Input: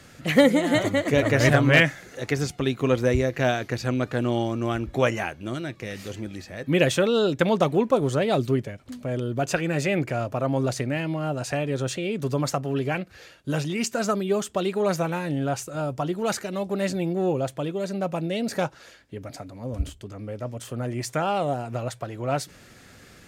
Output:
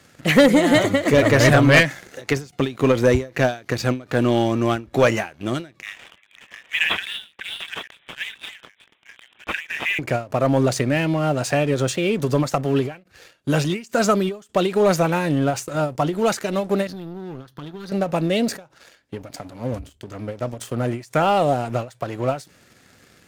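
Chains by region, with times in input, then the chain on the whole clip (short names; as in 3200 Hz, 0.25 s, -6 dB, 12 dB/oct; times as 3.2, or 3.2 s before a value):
5.82–9.99 reverse delay 0.514 s, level -5 dB + steep high-pass 1600 Hz 96 dB/oct + careless resampling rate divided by 6×, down none, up filtered
16.87–17.92 fixed phaser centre 2300 Hz, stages 6 + compressor, threshold -36 dBFS
whole clip: HPF 96 Hz 6 dB/oct; sample leveller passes 2; ending taper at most 190 dB/s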